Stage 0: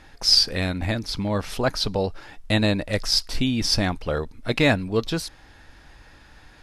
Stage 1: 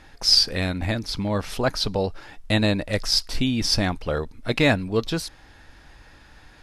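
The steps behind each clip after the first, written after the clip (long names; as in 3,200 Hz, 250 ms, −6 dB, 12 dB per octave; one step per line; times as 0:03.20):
no processing that can be heard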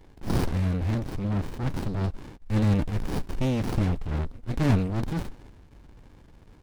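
transient designer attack −7 dB, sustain +6 dB
windowed peak hold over 65 samples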